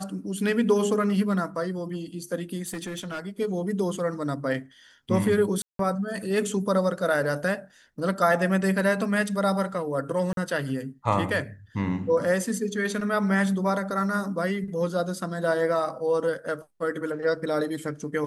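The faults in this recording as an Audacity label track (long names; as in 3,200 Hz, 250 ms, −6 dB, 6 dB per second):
2.660000	3.200000	clipping −29 dBFS
5.620000	5.790000	drop-out 173 ms
10.330000	10.370000	drop-out 42 ms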